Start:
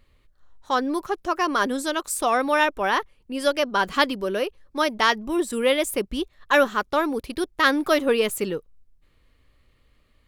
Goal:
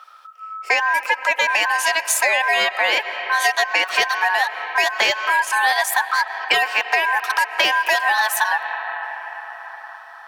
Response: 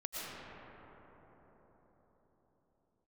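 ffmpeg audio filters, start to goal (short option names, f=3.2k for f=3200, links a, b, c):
-filter_complex "[0:a]asplit=2[a][b];[1:a]atrim=start_sample=2205,highshelf=f=11k:g=-8.5[c];[b][c]afir=irnorm=-1:irlink=0,volume=-18dB[d];[a][d]amix=inputs=2:normalize=0,aeval=exprs='val(0)*sin(2*PI*1300*n/s)':c=same,highpass=f=550:w=0.5412,highpass=f=550:w=1.3066,apsyclip=15.5dB,acompressor=threshold=-15dB:ratio=6"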